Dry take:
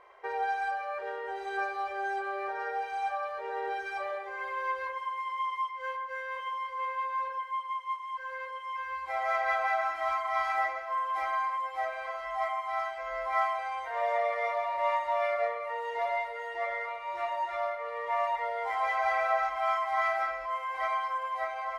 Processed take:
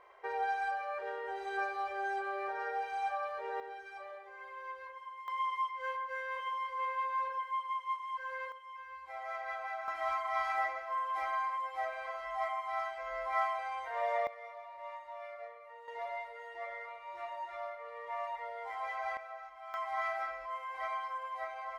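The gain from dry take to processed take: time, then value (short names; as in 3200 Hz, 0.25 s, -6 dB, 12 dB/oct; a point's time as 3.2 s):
-3 dB
from 3.6 s -12 dB
from 5.28 s -2 dB
from 8.52 s -11.5 dB
from 9.88 s -4 dB
from 14.27 s -17 dB
from 15.88 s -9.5 dB
from 19.17 s -19 dB
from 19.74 s -7 dB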